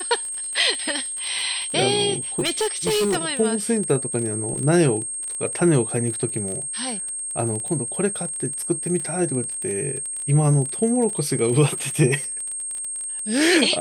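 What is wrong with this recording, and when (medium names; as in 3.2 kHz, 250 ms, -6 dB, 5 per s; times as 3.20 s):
crackle 24 per s -26 dBFS
whine 8.5 kHz -27 dBFS
2.39–3.17 s: clipped -17 dBFS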